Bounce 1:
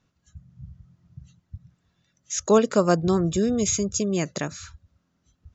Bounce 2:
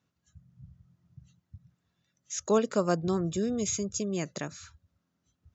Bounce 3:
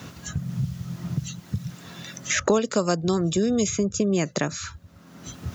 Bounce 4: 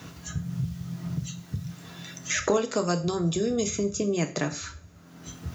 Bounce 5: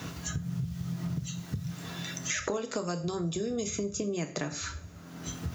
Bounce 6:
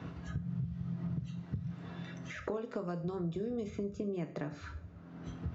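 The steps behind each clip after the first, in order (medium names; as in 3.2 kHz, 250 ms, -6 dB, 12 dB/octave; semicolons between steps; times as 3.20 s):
high-pass 81 Hz; trim -7 dB
three bands compressed up and down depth 100%; trim +8 dB
two-slope reverb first 0.37 s, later 2.3 s, from -27 dB, DRR 5 dB; trim -4 dB
compression 4:1, threshold -35 dBFS, peak gain reduction 13.5 dB; trim +4 dB
tape spacing loss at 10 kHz 37 dB; trim -3 dB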